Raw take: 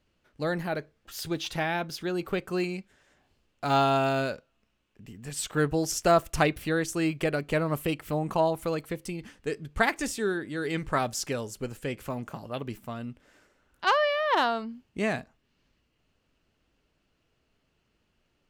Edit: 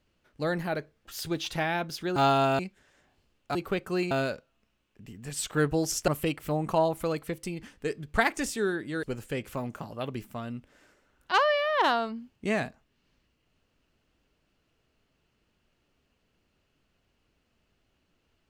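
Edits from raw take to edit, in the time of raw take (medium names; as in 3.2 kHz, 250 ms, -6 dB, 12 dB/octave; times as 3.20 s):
2.16–2.72 s: swap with 3.68–4.11 s
6.08–7.70 s: delete
10.65–11.56 s: delete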